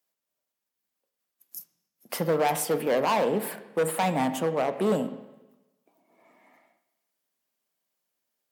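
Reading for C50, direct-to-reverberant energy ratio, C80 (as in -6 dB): 11.5 dB, 9.5 dB, 13.5 dB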